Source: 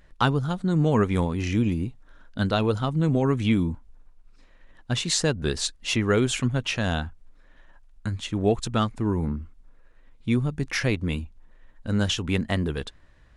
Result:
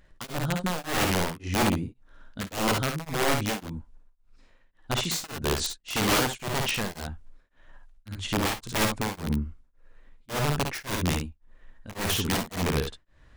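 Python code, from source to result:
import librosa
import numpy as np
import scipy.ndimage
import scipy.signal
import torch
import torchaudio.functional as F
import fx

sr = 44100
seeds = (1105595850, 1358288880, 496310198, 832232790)

p1 = fx.dynamic_eq(x, sr, hz=530.0, q=0.93, threshold_db=-32.0, ratio=4.0, max_db=3)
p2 = fx.rider(p1, sr, range_db=10, speed_s=2.0)
p3 = (np.mod(10.0 ** (17.5 / 20.0) * p2 + 1.0, 2.0) - 1.0) / 10.0 ** (17.5 / 20.0)
p4 = p3 + fx.room_early_taps(p3, sr, ms=(55, 68), db=(-6.0, -7.5), dry=0)
p5 = p4 * np.abs(np.cos(np.pi * 1.8 * np.arange(len(p4)) / sr))
y = F.gain(torch.from_numpy(p5), -1.0).numpy()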